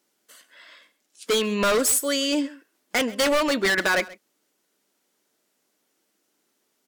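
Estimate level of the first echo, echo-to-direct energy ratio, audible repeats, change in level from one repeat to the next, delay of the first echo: -20.5 dB, -20.5 dB, 1, no steady repeat, 0.132 s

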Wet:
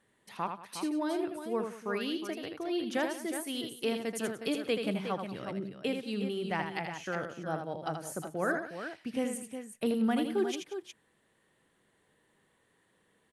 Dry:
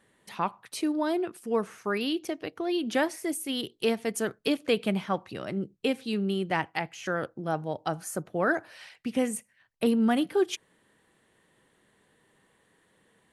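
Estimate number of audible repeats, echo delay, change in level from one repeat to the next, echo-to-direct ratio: 3, 80 ms, no steady repeat, -4.5 dB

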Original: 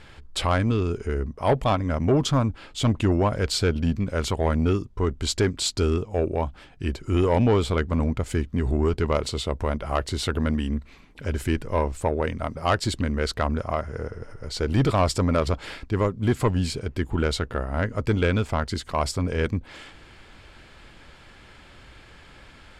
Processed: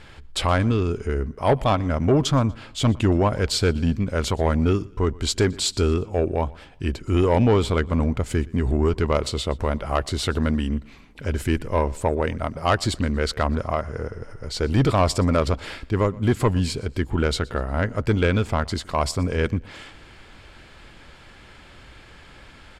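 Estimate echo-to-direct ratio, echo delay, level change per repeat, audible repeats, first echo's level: -23.0 dB, 0.12 s, -8.0 dB, 2, -23.5 dB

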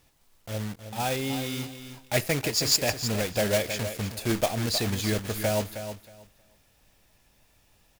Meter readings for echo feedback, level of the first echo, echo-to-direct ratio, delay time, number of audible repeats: 18%, -10.0 dB, -10.0 dB, 0.315 s, 2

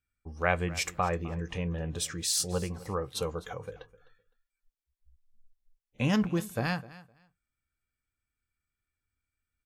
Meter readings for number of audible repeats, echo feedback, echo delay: 2, 18%, 0.256 s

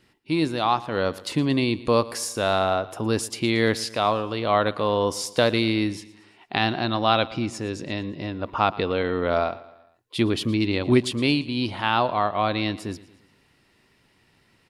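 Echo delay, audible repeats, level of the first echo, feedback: 0.115 s, 3, -19.0 dB, 50%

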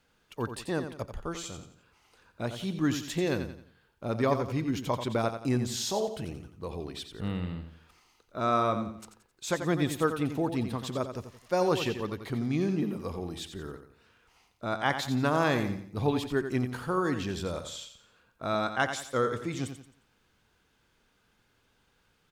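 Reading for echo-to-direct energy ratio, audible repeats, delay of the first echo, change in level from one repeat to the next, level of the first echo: -8.5 dB, 4, 88 ms, -8.5 dB, -9.0 dB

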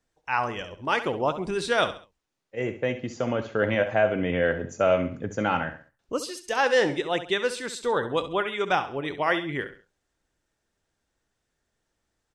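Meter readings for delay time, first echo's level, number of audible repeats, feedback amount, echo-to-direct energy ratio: 67 ms, -12.0 dB, 3, 34%, -11.5 dB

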